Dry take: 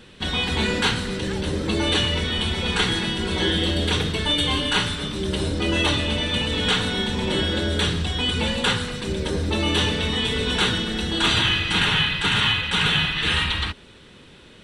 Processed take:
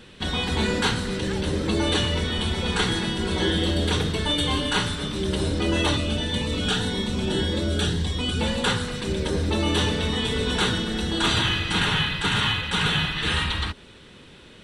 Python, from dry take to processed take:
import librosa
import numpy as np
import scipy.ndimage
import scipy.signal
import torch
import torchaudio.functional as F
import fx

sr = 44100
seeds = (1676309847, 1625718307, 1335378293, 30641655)

y = fx.dynamic_eq(x, sr, hz=2600.0, q=1.2, threshold_db=-34.0, ratio=4.0, max_db=-5)
y = fx.notch_cascade(y, sr, direction='rising', hz=1.8, at=(5.97, 8.41))